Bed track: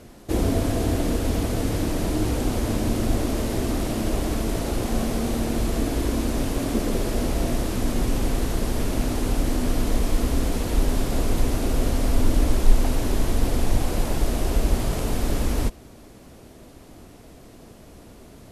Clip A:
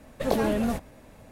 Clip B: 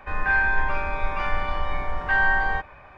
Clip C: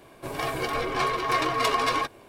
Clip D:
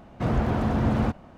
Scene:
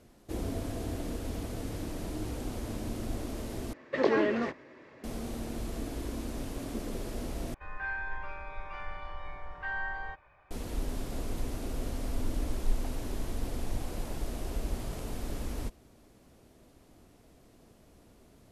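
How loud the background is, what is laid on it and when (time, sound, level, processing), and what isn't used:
bed track −13 dB
0:03.73: overwrite with A −1.5 dB + loudspeaker in its box 190–5,000 Hz, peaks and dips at 200 Hz −9 dB, 360 Hz +10 dB, 740 Hz −7 dB, 1,100 Hz +4 dB, 1,900 Hz +9 dB, 3,700 Hz −4 dB
0:07.54: overwrite with B −15 dB + parametric band 230 Hz −14.5 dB 0.21 octaves
not used: C, D

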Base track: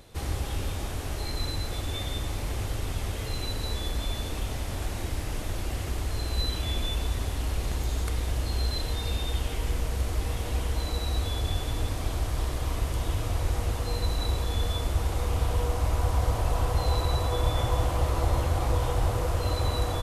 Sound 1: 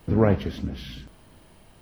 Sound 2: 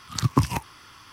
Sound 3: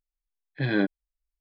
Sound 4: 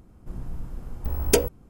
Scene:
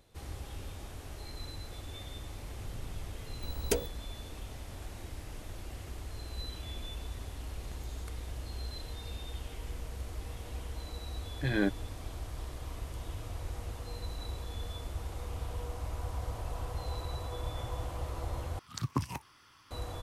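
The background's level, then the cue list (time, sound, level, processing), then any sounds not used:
base track −12 dB
0:02.38: mix in 4 −11 dB
0:10.83: mix in 3 −5 dB
0:18.59: overwrite with 2 −12 dB
not used: 1

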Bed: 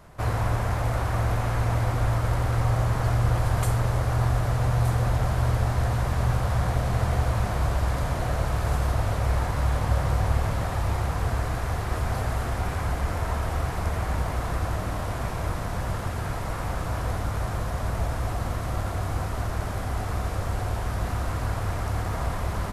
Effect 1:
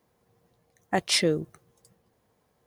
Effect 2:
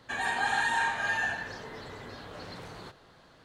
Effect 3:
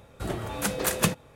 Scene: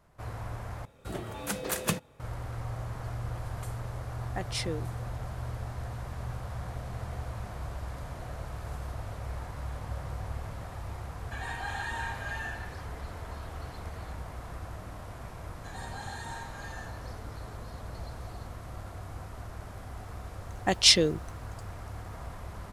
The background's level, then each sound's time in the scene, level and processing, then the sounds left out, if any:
bed −13.5 dB
0:00.85: overwrite with 3 −5.5 dB
0:03.43: mix in 1 −11 dB
0:11.22: mix in 2 −8.5 dB + Butterworth high-pass 200 Hz 72 dB per octave
0:15.55: mix in 2 −7 dB + drawn EQ curve 340 Hz 0 dB, 2,700 Hz −13 dB, 4,300 Hz 0 dB
0:19.74: mix in 1 −1.5 dB + flat-topped bell 4,500 Hz +8 dB

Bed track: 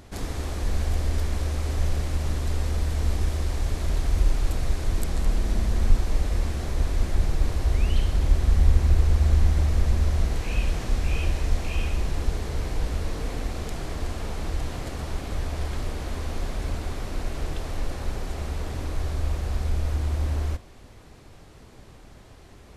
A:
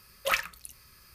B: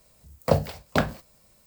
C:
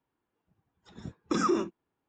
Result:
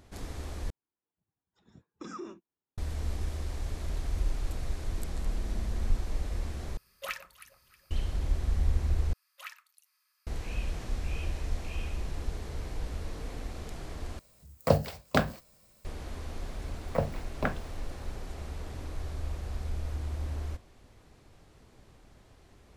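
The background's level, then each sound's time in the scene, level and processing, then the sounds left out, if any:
bed track −9 dB
0:00.70: overwrite with C −15 dB
0:06.77: overwrite with A −10.5 dB + delay that swaps between a low-pass and a high-pass 158 ms, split 990 Hz, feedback 58%, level −13 dB
0:09.13: overwrite with A −17.5 dB + high-pass filter 830 Hz 24 dB per octave
0:14.19: overwrite with B −2.5 dB + notch filter 890 Hz, Q 18
0:16.47: mix in B −8.5 dB + high shelf with overshoot 3,000 Hz −9 dB, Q 1.5

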